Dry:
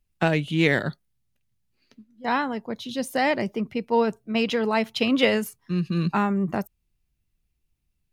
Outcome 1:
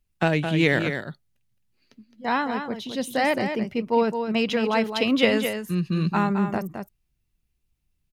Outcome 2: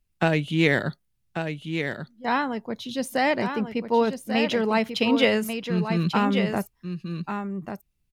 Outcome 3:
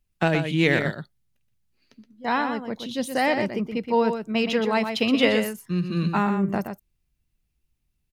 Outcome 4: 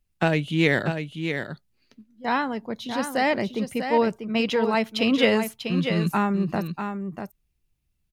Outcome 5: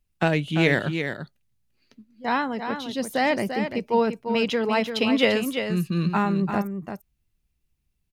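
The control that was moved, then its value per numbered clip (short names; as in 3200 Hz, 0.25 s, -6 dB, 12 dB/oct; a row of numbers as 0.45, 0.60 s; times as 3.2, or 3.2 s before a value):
echo, time: 0.215, 1.141, 0.122, 0.643, 0.343 s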